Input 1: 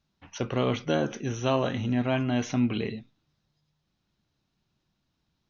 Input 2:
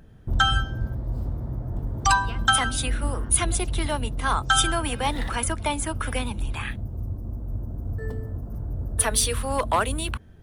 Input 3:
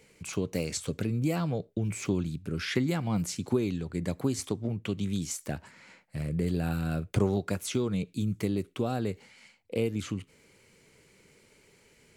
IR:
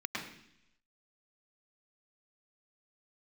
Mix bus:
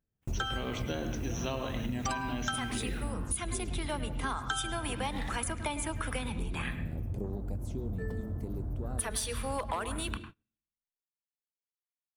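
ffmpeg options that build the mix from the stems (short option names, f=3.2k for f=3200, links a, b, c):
-filter_complex "[0:a]acrusher=bits=9:mix=0:aa=0.000001,crystalizer=i=2.5:c=0,volume=-6.5dB,asplit=2[a][b];[b]volume=-6dB[c];[1:a]volume=-4.5dB,asplit=2[d][e];[e]volume=-13dB[f];[2:a]afwtdn=0.0224,highshelf=f=5.1k:g=11,volume=-11dB,asplit=2[g][h];[h]volume=-15dB[i];[3:a]atrim=start_sample=2205[j];[c][f][i]amix=inputs=3:normalize=0[k];[k][j]afir=irnorm=-1:irlink=0[l];[a][d][g][l]amix=inputs=4:normalize=0,agate=range=-32dB:threshold=-43dB:ratio=16:detection=peak,acompressor=threshold=-30dB:ratio=10"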